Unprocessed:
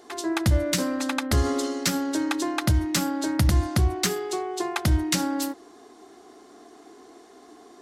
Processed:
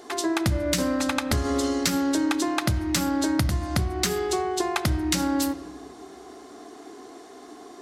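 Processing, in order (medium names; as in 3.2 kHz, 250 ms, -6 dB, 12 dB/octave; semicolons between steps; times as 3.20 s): compression, threshold -26 dBFS, peak gain reduction 10 dB; on a send: reverberation RT60 1.6 s, pre-delay 7 ms, DRR 13 dB; on the sum: trim +5 dB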